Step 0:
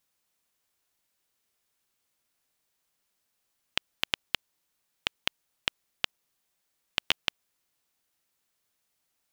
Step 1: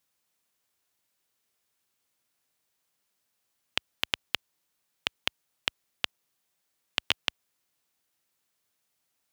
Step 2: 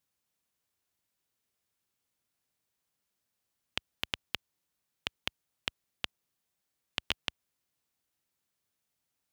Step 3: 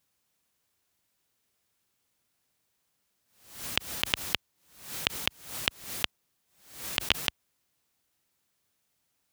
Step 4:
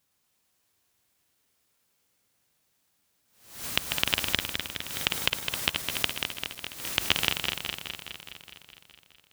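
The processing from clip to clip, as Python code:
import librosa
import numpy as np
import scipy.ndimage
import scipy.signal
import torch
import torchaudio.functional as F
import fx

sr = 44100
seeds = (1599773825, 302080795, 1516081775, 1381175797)

y1 = scipy.signal.sosfilt(scipy.signal.butter(2, 56.0, 'highpass', fs=sr, output='sos'), x)
y2 = fx.low_shelf(y1, sr, hz=240.0, db=8.0)
y2 = y2 * librosa.db_to_amplitude(-6.0)
y3 = fx.pre_swell(y2, sr, db_per_s=100.0)
y3 = y3 * librosa.db_to_amplitude(7.0)
y4 = fx.reverse_delay_fb(y3, sr, ms=104, feedback_pct=82, wet_db=-5.5)
y4 = y4 * librosa.db_to_amplitude(1.5)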